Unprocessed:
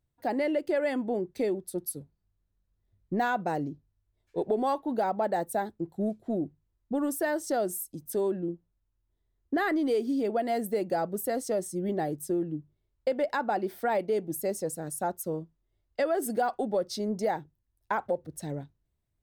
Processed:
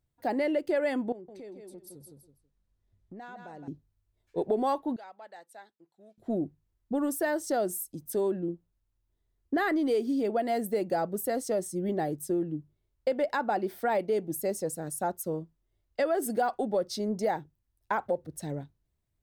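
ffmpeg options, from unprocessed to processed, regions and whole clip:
-filter_complex "[0:a]asettb=1/sr,asplit=3[s0][s1][s2];[s0]atrim=end=1.124[s3];[s1]atrim=start=1.12:end=3.68,asetpts=PTS-STARTPTS,afade=t=in:d=0.004:c=qsin,afade=t=out:st=2.556:d=0.004:c=qsin,lowpass=9000,aecho=1:1:162|324|486:0.355|0.0781|0.0172,atrim=end_sample=112896,acompressor=threshold=0.00398:ratio=3:attack=3.2:release=140:knee=1:detection=peak[s4];[s2]atrim=start=3.676[s5];[s3][s4]acrossfade=d=0.004:c1=hsin:c2=qsin[s6];[s6][s5]acrossfade=d=0.004:c1=qsin:c2=hsin,asettb=1/sr,asplit=3[s7][s8][s9];[s7]atrim=end=4.964[s10];[s8]atrim=start=4.96:end=6.18,asetpts=PTS-STARTPTS,afade=t=in:d=0.004:c=qsin,afade=t=out:st=1.216:d=0.004:c=qsin,lowpass=3400,aderivative[s11];[s9]atrim=start=6.176[s12];[s10][s11]acrossfade=d=0.004:c1=hsin:c2=qsin[s13];[s13][s12]acrossfade=d=0.004:c1=qsin:c2=hsin"

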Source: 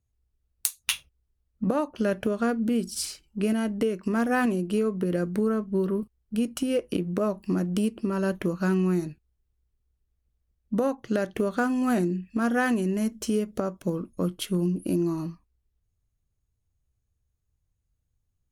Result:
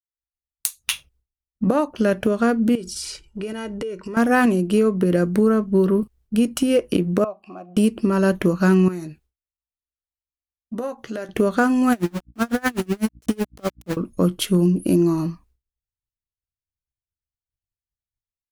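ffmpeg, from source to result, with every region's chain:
-filter_complex "[0:a]asettb=1/sr,asplit=3[s0][s1][s2];[s0]atrim=end=2.754[s3];[s1]atrim=start=2.75:end=4.17,asetpts=PTS-STARTPTS,afade=t=in:d=0.004:c=qsin,afade=t=out:st=1.416:d=0.004:c=qsin,lowpass=8900,aecho=1:1:2.1:0.57,atrim=end_sample=62622,acompressor=threshold=0.0141:ratio=4:attack=3.2:release=140:knee=1:detection=peak[s4];[s2]atrim=start=4.166[s5];[s3][s4]acrossfade=d=0.004:c1=hsin:c2=qsin[s6];[s6][s5]acrossfade=d=0.004:c1=qsin:c2=hsin,asettb=1/sr,asplit=3[s7][s8][s9];[s7]atrim=end=7.244[s10];[s8]atrim=start=7.24:end=7.77,asetpts=PTS-STARTPTS,afade=t=in:d=0.004:c=qsin,afade=t=out:st=0.526:d=0.004:c=qsin,asplit=3[s11][s12][s13];[s11]bandpass=f=730:t=q:w=8,volume=1[s14];[s12]bandpass=f=1090:t=q:w=8,volume=0.501[s15];[s13]bandpass=f=2440:t=q:w=8,volume=0.355[s16];[s14][s15][s16]amix=inputs=3:normalize=0,acompressor=mode=upward:threshold=0.00631:ratio=2.5:attack=3.2:release=140:knee=2.83:detection=peak,bandreject=f=460:w=12[s17];[s9]atrim=start=7.766[s18];[s10][s17]acrossfade=d=0.004:c1=hsin:c2=qsin[s19];[s19][s18]acrossfade=d=0.004:c1=qsin:c2=hsin,asettb=1/sr,asplit=3[s20][s21][s22];[s20]atrim=end=8.884[s23];[s21]atrim=start=8.88:end=11.29,asetpts=PTS-STARTPTS,afade=t=in:d=0.004:c=qsin,afade=t=out:st=2.406:d=0.004:c=qsin,lowshelf=f=180:g=-8,asplit=2[s24][s25];[s25]adelay=13,volume=0.355[s26];[s24][s26]amix=inputs=2:normalize=0,atrim=end_sample=106281,acompressor=threshold=0.00794:ratio=2:attack=3.2:release=140:knee=1:detection=peak[s27];[s22]atrim=start=11.286[s28];[s23][s27]acrossfade=d=0.004:c1=hsin:c2=qsin[s29];[s29][s28]acrossfade=d=0.004:c1=qsin:c2=hsin,asettb=1/sr,asplit=3[s30][s31][s32];[s30]atrim=end=11.924[s33];[s31]atrim=start=11.92:end=13.97,asetpts=PTS-STARTPTS,afade=t=in:d=0.004:c=qsin,afade=t=out:st=2.046:d=0.004:c=qsin,aeval=exprs='val(0)*gte(abs(val(0)),0.0316)':c=same,aeval=exprs='val(0)+0.00316*(sin(2*PI*60*n/s)+sin(2*PI*2*60*n/s)/2+sin(2*PI*3*60*n/s)/3+sin(2*PI*4*60*n/s)/4+sin(2*PI*5*60*n/s)/5)':c=same,aeval=exprs='val(0)*pow(10,-33*(0.5-0.5*cos(2*PI*8*n/s))/20)':c=same[s34];[s32]atrim=start=13.966[s35];[s33][s34]acrossfade=d=0.004:c1=hsin:c2=qsin[s36];[s36][s35]acrossfade=d=0.004:c1=qsin:c2=hsin,agate=range=0.0224:threshold=0.00158:ratio=3:detection=peak,dynaudnorm=f=110:g=7:m=4.73,volume=0.631"

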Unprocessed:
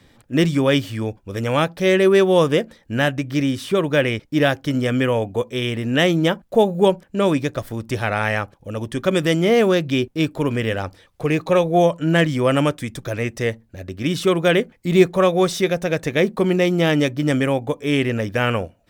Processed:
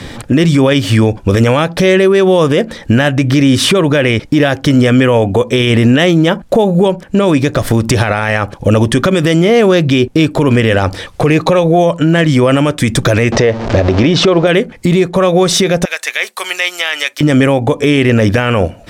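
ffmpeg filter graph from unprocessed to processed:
-filter_complex "[0:a]asettb=1/sr,asplit=3[s0][s1][s2];[s0]atrim=end=13.324[s3];[s1]atrim=start=13.32:end=14.47,asetpts=PTS-STARTPTS,afade=t=in:d=0.004:c=qsin,afade=t=out:st=1.146:d=0.004:c=qsin,aeval=exprs='val(0)+0.5*0.02*sgn(val(0))':c=same,lowpass=f=5900:w=0.5412,lowpass=f=5900:w=1.3066,equalizer=f=620:t=o:w=1.7:g=9[s4];[s2]atrim=start=14.466[s5];[s3][s4]acrossfade=d=0.004:c1=hsin:c2=qsin[s6];[s6][s5]acrossfade=d=0.004:c1=qsin:c2=hsin,asettb=1/sr,asplit=3[s7][s8][s9];[s7]atrim=end=15.854[s10];[s8]atrim=start=15.85:end=17.21,asetpts=PTS-STARTPTS,afade=t=in:d=0.004:c=qsin,afade=t=out:st=1.356:d=0.004:c=qsin,highpass=780,acrossover=split=3100[s11][s12];[s12]acompressor=threshold=0.00501:ratio=4:attack=1:release=60[s13];[s11][s13]amix=inputs=2:normalize=0,aderivative[s14];[s9]atrim=start=17.206[s15];[s10][s14]acrossfade=d=0.004:c1=hsin:c2=qsin[s16];[s16][s15]acrossfade=d=0.004:c1=qsin:c2=hsin,lowpass=11000,acompressor=threshold=0.0447:ratio=12,alimiter=level_in=21.1:limit=0.891:release=50:level=0:latency=1,volume=0.891"

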